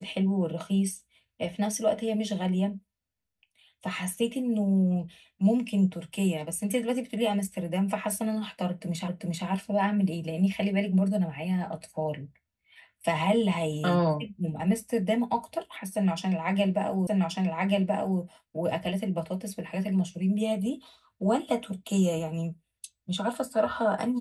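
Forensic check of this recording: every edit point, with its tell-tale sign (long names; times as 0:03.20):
0:09.08: the same again, the last 0.39 s
0:17.07: the same again, the last 1.13 s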